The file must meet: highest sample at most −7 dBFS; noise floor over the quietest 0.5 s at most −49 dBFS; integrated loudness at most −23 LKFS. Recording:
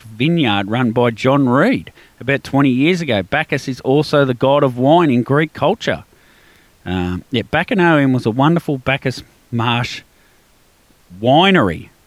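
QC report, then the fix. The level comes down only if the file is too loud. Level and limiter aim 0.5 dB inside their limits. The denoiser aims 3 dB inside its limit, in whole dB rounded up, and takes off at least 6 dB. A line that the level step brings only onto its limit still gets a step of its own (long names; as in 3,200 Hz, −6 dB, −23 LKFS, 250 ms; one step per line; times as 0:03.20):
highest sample −1.5 dBFS: out of spec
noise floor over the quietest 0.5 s −53 dBFS: in spec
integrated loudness −15.5 LKFS: out of spec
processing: level −8 dB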